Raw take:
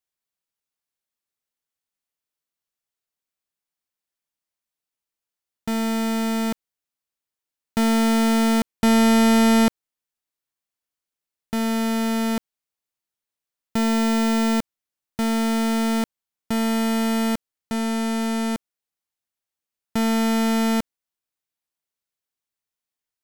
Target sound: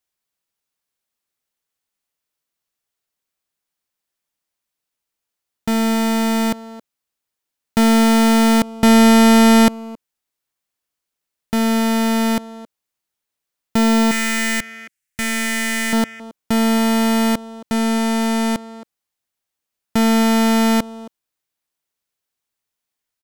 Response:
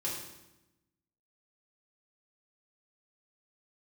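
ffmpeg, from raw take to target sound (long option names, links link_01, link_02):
-filter_complex "[0:a]asettb=1/sr,asplit=3[link_01][link_02][link_03];[link_01]atrim=end=14.114[link_04];[link_02]atrim=start=14.11:end=15.93,asetpts=PTS-STARTPTS,afade=type=in:duration=0.004:curve=qsin,afade=type=out:start_time=1.816:duration=0.004:curve=qsin,equalizer=frequency=125:width_type=o:width=1:gain=-3,equalizer=frequency=250:width_type=o:width=1:gain=-8,equalizer=frequency=500:width_type=o:width=1:gain=-9,equalizer=frequency=1000:width_type=o:width=1:gain=-12,equalizer=frequency=2000:width_type=o:width=1:gain=11,equalizer=frequency=4000:width_type=o:width=1:gain=-5,equalizer=frequency=8000:width_type=o:width=1:gain=6[link_05];[link_03]atrim=start=15.926[link_06];[link_04][link_05]acrossfade=duration=0.004:curve1=hsin:curve2=qsin[link_07];[link_07][link_06]acrossfade=duration=0.004:curve1=qsin:curve2=hsin,asplit=2[link_08][link_09];[link_09]adelay=270,highpass=300,lowpass=3400,asoftclip=type=hard:threshold=-24.5dB,volume=-11dB[link_10];[link_08][link_10]amix=inputs=2:normalize=0,volume=6dB"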